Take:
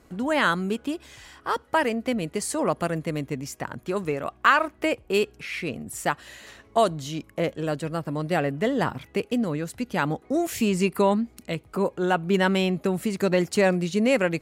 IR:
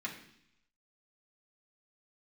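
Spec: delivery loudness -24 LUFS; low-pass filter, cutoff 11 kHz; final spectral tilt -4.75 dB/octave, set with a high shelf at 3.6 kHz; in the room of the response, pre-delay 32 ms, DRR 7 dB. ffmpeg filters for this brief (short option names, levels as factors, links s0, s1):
-filter_complex "[0:a]lowpass=11000,highshelf=f=3600:g=5,asplit=2[s0][s1];[1:a]atrim=start_sample=2205,adelay=32[s2];[s1][s2]afir=irnorm=-1:irlink=0,volume=0.355[s3];[s0][s3]amix=inputs=2:normalize=0,volume=1.06"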